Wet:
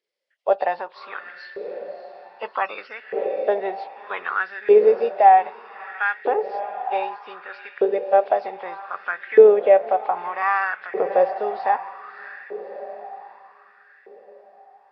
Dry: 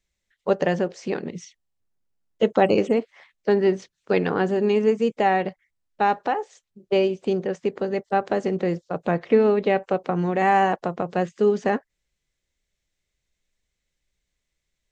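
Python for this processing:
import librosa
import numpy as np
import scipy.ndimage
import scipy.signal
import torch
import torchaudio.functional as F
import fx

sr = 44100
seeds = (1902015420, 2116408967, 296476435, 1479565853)

y = fx.freq_compress(x, sr, knee_hz=2400.0, ratio=1.5)
y = fx.echo_diffused(y, sr, ms=619, feedback_pct=53, wet_db=-11.0)
y = fx.filter_lfo_highpass(y, sr, shape='saw_up', hz=0.64, low_hz=420.0, high_hz=1800.0, q=5.5)
y = y * 10.0 ** (-3.5 / 20.0)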